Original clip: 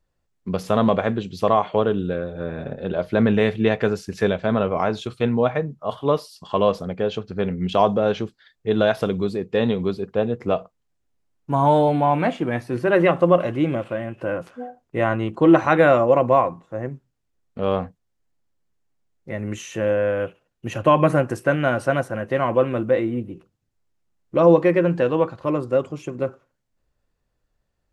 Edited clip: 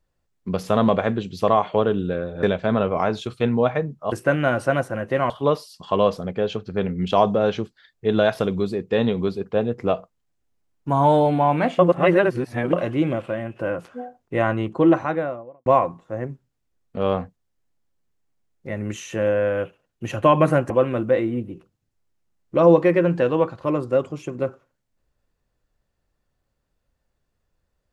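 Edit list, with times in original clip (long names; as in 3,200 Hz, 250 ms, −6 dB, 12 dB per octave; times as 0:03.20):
0:02.43–0:04.23: remove
0:12.41–0:13.35: reverse
0:15.15–0:16.28: fade out and dull
0:21.32–0:22.50: move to 0:05.92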